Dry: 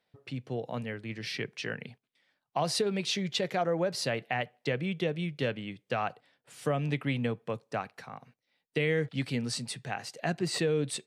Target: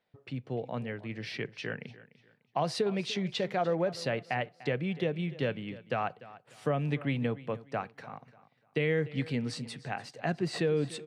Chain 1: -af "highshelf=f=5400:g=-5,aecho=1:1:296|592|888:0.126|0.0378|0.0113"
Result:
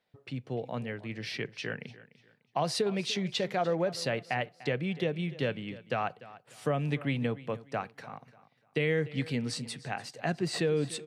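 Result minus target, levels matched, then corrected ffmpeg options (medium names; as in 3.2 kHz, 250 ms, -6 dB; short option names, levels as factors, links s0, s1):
8 kHz band +5.0 dB
-af "highshelf=f=5400:g=-14,aecho=1:1:296|592|888:0.126|0.0378|0.0113"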